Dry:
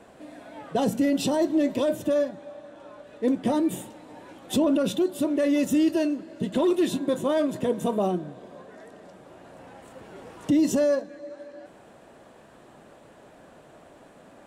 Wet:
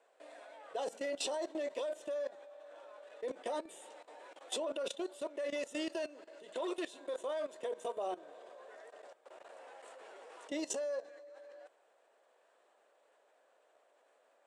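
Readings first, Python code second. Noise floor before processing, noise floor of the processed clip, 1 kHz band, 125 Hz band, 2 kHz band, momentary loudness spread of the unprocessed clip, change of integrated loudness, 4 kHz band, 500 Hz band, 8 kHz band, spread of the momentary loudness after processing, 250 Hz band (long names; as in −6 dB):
−52 dBFS, −71 dBFS, −11.0 dB, below −35 dB, −9.0 dB, 20 LU, −15.0 dB, −8.0 dB, −12.5 dB, −8.0 dB, 16 LU, −22.5 dB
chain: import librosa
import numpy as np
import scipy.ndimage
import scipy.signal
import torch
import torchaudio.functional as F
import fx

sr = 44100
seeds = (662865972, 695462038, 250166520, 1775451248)

y = scipy.signal.sosfilt(scipy.signal.cheby1(3, 1.0, [480.0, 9000.0], 'bandpass', fs=sr, output='sos'), x)
y = fx.level_steps(y, sr, step_db=17)
y = y * librosa.db_to_amplitude(-2.5)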